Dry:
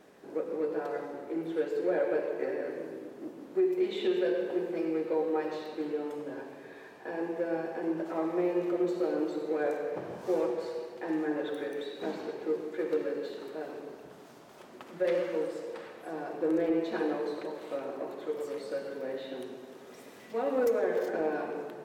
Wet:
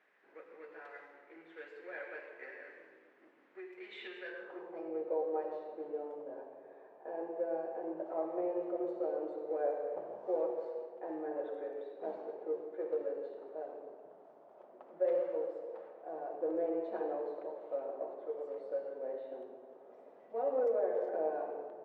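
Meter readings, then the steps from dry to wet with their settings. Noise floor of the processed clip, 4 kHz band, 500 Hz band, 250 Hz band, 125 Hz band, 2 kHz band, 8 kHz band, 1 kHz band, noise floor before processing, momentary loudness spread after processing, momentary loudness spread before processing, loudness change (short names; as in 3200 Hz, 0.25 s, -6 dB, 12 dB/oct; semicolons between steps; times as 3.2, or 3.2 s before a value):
-61 dBFS, under -10 dB, -5.5 dB, -12.5 dB, under -15 dB, -9.0 dB, n/a, -4.0 dB, -51 dBFS, 19 LU, 14 LU, -6.0 dB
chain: notches 60/120/180/240/300 Hz; band-pass sweep 2000 Hz -> 630 Hz, 4.23–4.96; mismatched tape noise reduction decoder only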